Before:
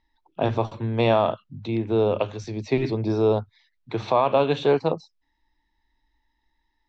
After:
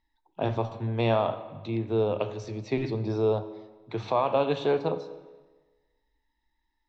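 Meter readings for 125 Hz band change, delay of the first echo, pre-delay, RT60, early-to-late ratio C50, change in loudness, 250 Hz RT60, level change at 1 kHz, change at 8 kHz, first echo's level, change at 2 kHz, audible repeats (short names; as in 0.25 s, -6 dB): -3.5 dB, none, 10 ms, 1.3 s, 12.5 dB, -5.0 dB, 1.3 s, -5.0 dB, n/a, none, -5.0 dB, none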